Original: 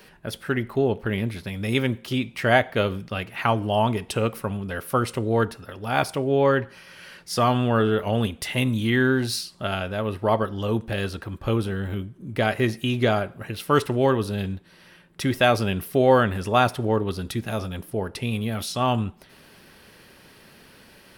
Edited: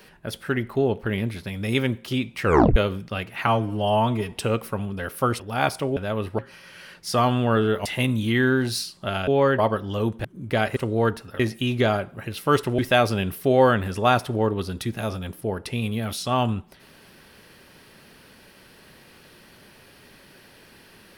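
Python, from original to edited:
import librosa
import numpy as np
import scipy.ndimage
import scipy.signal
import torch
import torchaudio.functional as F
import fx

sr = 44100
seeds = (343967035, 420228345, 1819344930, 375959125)

y = fx.edit(x, sr, fx.tape_stop(start_s=2.43, length_s=0.33),
    fx.stretch_span(start_s=3.47, length_s=0.57, factor=1.5),
    fx.move(start_s=5.11, length_s=0.63, to_s=12.62),
    fx.swap(start_s=6.31, length_s=0.31, other_s=9.85, other_length_s=0.42),
    fx.cut(start_s=8.09, length_s=0.34),
    fx.cut(start_s=10.93, length_s=1.17),
    fx.cut(start_s=14.01, length_s=1.27), tone=tone)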